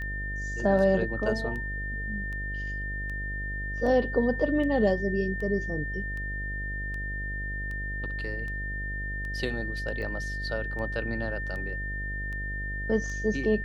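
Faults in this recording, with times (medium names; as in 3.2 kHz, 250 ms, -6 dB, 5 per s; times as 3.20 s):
buzz 50 Hz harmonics 14 -35 dBFS
tick 78 rpm -28 dBFS
whine 1.8 kHz -34 dBFS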